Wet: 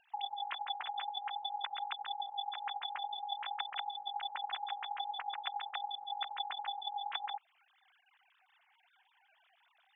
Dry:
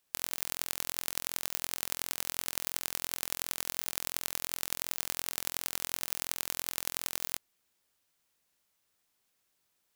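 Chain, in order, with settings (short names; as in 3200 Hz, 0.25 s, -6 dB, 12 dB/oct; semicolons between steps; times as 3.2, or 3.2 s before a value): sine-wave speech; in parallel at -1.5 dB: compressor, threshold -48 dBFS, peak gain reduction 17 dB; on the sum: flange 0.5 Hz, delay 0.4 ms, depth 4.7 ms, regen -37%; gain -1 dB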